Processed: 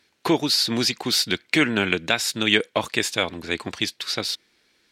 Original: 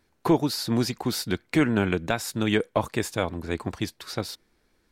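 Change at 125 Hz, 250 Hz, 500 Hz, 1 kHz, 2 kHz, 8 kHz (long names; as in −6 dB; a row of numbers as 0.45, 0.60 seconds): −4.0, −0.5, +0.5, +1.5, +8.5, +7.5 decibels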